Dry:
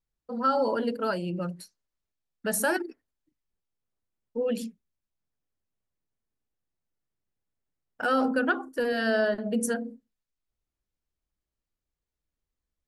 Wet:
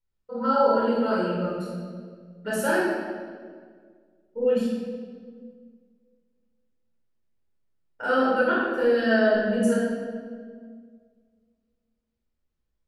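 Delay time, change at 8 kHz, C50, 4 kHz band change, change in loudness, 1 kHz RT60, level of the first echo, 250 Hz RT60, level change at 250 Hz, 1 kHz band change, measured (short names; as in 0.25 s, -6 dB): none, -5.5 dB, -1.0 dB, +1.5 dB, +4.0 dB, 1.6 s, none, 2.4 s, +5.0 dB, +3.5 dB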